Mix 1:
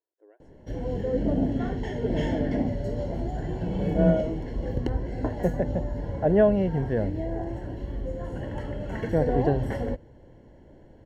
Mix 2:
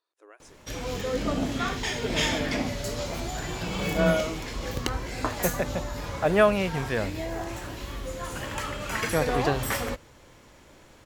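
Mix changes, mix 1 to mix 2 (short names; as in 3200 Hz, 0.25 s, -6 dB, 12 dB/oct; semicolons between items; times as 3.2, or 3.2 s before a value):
background -4.5 dB; master: remove running mean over 36 samples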